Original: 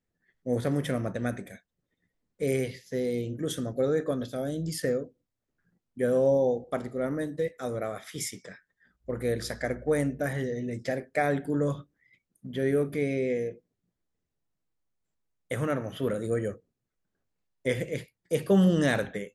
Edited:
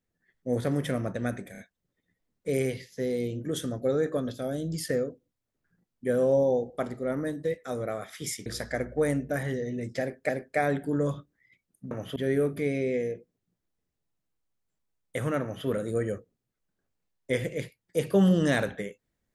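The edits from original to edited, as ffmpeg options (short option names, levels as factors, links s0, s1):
-filter_complex "[0:a]asplit=7[s0][s1][s2][s3][s4][s5][s6];[s0]atrim=end=1.552[s7];[s1]atrim=start=1.518:end=1.552[s8];[s2]atrim=start=1.518:end=8.402[s9];[s3]atrim=start=9.358:end=11.192[s10];[s4]atrim=start=10.898:end=12.522[s11];[s5]atrim=start=15.778:end=16.032[s12];[s6]atrim=start=12.518[s13];[s7][s8]acrossfade=d=0.004:c1=hsin:c2=hsin[s14];[s14][s9]acrossfade=d=0.004:c1=hsin:c2=hsin[s15];[s15][s10]acrossfade=d=0.004:c1=hsin:c2=hsin[s16];[s16][s11]acrossfade=d=0.004:c1=hsin:c2=hsin[s17];[s17][s12]acrossfade=d=0.004:c1=hsin:c2=hsin[s18];[s18][s13]acrossfade=d=0.004:c1=hsin:c2=hsin"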